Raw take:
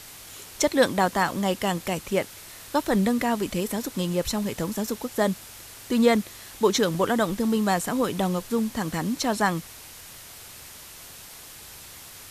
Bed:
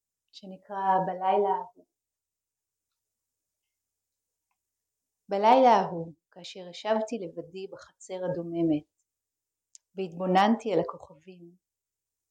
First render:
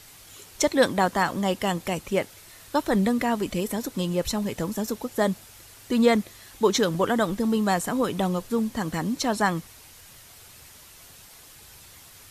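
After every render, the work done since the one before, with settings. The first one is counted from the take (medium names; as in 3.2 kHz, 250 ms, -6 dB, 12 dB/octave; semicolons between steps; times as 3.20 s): noise reduction 6 dB, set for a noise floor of -44 dBFS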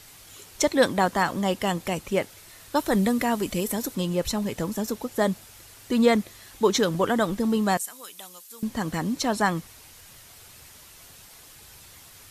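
2.76–3.95 s: treble shelf 6.6 kHz +7 dB; 7.77–8.63 s: differentiator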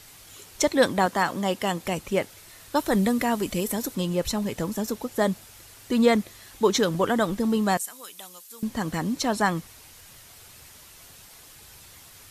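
1.06–1.84 s: high-pass 150 Hz 6 dB/octave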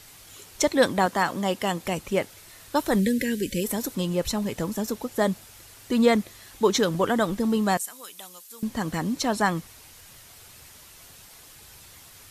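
3.00–3.64 s: time-frequency box 570–1500 Hz -28 dB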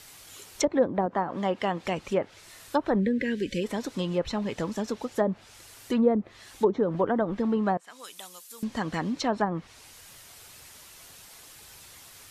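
bass shelf 200 Hz -6 dB; low-pass that closes with the level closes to 570 Hz, closed at -18 dBFS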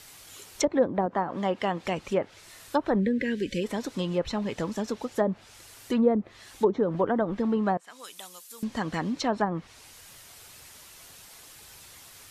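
no audible change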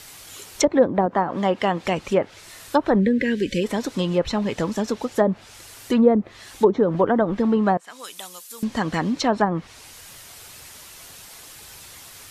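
trim +6.5 dB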